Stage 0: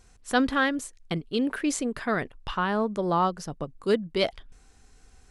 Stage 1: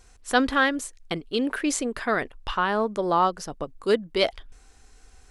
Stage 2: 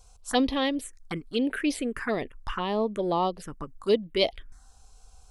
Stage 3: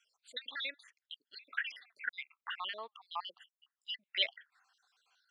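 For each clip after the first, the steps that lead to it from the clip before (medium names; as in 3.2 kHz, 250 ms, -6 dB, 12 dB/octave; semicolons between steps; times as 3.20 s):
peaking EQ 150 Hz -9 dB 1.3 oct; trim +3.5 dB
touch-sensitive phaser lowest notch 300 Hz, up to 1.5 kHz, full sweep at -20.5 dBFS
random holes in the spectrogram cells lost 63%; Butterworth band-pass 2.2 kHz, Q 1; trim +2 dB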